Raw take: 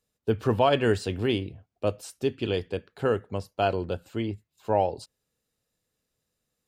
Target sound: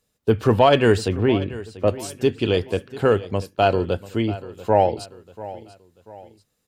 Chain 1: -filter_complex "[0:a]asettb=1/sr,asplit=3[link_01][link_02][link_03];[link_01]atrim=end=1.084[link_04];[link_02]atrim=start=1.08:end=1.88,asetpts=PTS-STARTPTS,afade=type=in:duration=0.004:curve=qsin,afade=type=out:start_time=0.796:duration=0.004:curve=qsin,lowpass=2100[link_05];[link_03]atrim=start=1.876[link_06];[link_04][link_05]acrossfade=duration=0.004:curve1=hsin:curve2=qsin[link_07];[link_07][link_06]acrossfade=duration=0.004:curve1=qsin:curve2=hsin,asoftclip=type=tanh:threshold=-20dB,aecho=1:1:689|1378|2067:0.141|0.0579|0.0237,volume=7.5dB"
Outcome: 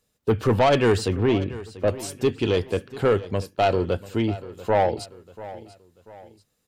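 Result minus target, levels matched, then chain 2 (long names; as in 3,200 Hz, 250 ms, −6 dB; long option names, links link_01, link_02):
soft clipping: distortion +15 dB
-filter_complex "[0:a]asettb=1/sr,asplit=3[link_01][link_02][link_03];[link_01]atrim=end=1.084[link_04];[link_02]atrim=start=1.08:end=1.88,asetpts=PTS-STARTPTS,afade=type=in:duration=0.004:curve=qsin,afade=type=out:start_time=0.796:duration=0.004:curve=qsin,lowpass=2100[link_05];[link_03]atrim=start=1.876[link_06];[link_04][link_05]acrossfade=duration=0.004:curve1=hsin:curve2=qsin[link_07];[link_07][link_06]acrossfade=duration=0.004:curve1=qsin:curve2=hsin,asoftclip=type=tanh:threshold=-9dB,aecho=1:1:689|1378|2067:0.141|0.0579|0.0237,volume=7.5dB"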